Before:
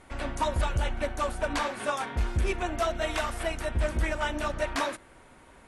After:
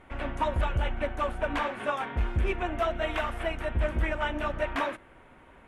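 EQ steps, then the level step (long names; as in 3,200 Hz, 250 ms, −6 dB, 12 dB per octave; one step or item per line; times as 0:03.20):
flat-topped bell 6,700 Hz −14 dB
0.0 dB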